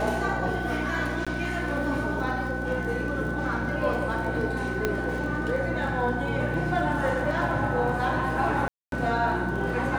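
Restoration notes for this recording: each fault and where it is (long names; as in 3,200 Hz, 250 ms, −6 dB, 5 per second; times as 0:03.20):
surface crackle 27 per second −35 dBFS
mains hum 60 Hz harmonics 6 −32 dBFS
whistle 1,500 Hz −33 dBFS
0:01.25–0:01.27: drop-out 16 ms
0:04.85: click −10 dBFS
0:08.68–0:08.92: drop-out 242 ms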